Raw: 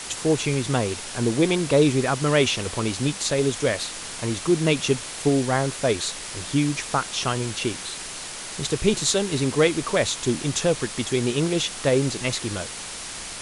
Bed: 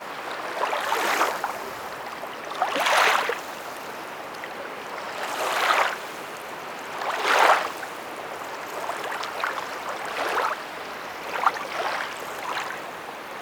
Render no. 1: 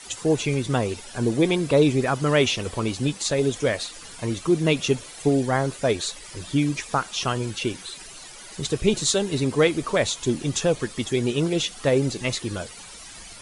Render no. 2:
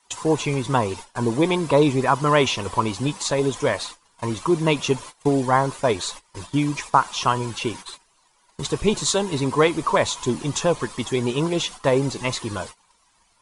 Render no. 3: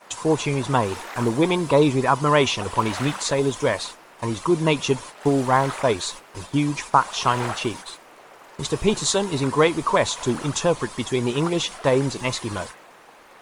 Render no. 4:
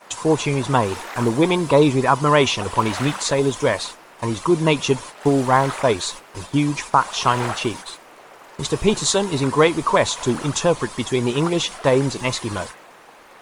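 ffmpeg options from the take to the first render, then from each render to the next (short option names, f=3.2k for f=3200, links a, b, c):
-af "afftdn=nr=13:nf=-35"
-af "equalizer=f=990:w=2.9:g=14.5,agate=range=-22dB:threshold=-35dB:ratio=16:detection=peak"
-filter_complex "[1:a]volume=-13dB[a];[0:a][a]amix=inputs=2:normalize=0"
-af "volume=2.5dB,alimiter=limit=-2dB:level=0:latency=1"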